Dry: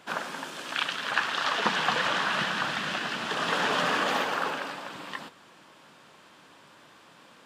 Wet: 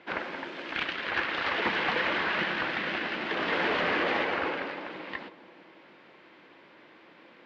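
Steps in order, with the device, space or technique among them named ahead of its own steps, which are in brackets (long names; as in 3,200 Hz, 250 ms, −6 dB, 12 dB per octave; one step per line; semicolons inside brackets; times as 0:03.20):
analogue delay pedal into a guitar amplifier (bucket-brigade delay 164 ms, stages 1,024, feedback 65%, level −13.5 dB; tube saturation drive 23 dB, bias 0.65; loudspeaker in its box 78–4,000 Hz, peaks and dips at 130 Hz −7 dB, 340 Hz +9 dB, 510 Hz +4 dB, 1,200 Hz −3 dB, 2,100 Hz +8 dB, 3,400 Hz −3 dB)
level +1.5 dB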